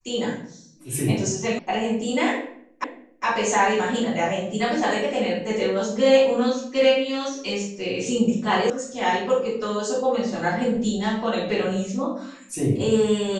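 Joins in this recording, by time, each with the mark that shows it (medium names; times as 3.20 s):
1.59 s: sound stops dead
2.84 s: repeat of the last 0.41 s
8.70 s: sound stops dead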